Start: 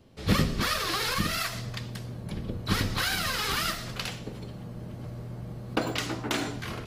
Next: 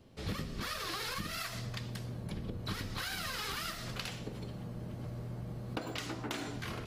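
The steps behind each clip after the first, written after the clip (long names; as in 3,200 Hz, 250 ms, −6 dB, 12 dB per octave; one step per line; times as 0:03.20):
downward compressor 6 to 1, threshold −33 dBFS, peak gain reduction 14 dB
level −2.5 dB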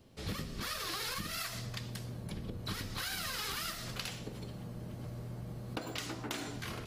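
high-shelf EQ 4,800 Hz +6 dB
level −1.5 dB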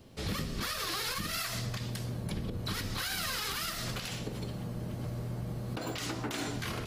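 brickwall limiter −31 dBFS, peak gain reduction 11 dB
level +6 dB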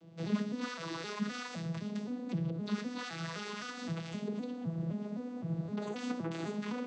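vocoder with an arpeggio as carrier major triad, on E3, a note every 258 ms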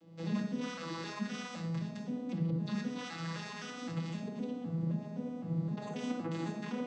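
rectangular room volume 2,000 cubic metres, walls furnished, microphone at 2.2 metres
level −3 dB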